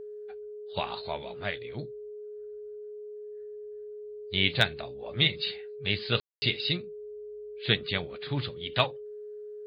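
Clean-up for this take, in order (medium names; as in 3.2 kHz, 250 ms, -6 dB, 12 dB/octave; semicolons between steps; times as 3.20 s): clip repair -7.5 dBFS; band-stop 420 Hz, Q 30; room tone fill 6.20–6.42 s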